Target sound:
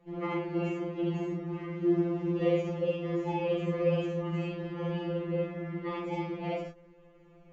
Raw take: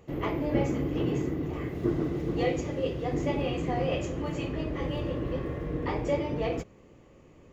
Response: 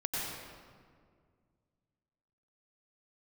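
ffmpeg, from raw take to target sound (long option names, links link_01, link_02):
-filter_complex "[1:a]atrim=start_sample=2205,afade=type=out:start_time=0.22:duration=0.01,atrim=end_sample=10143,asetrate=74970,aresample=44100[link_01];[0:a][link_01]afir=irnorm=-1:irlink=0,adynamicsmooth=sensitivity=1.5:basefreq=4100,afftfilt=real='re*2.83*eq(mod(b,8),0)':imag='im*2.83*eq(mod(b,8),0)':win_size=2048:overlap=0.75,volume=2.5dB"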